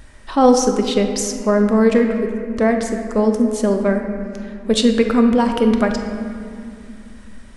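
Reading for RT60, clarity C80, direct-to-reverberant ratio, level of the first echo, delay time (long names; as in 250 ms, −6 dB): 2.5 s, 7.0 dB, 4.0 dB, no echo audible, no echo audible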